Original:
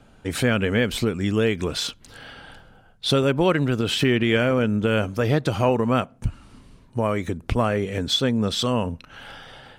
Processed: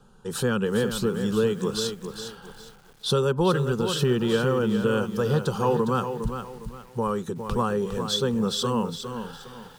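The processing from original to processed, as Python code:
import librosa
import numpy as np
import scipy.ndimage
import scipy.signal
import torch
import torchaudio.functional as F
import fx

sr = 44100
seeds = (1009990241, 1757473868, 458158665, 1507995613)

y = fx.fixed_phaser(x, sr, hz=430.0, stages=8)
y = fx.echo_crushed(y, sr, ms=408, feedback_pct=35, bits=8, wet_db=-8.0)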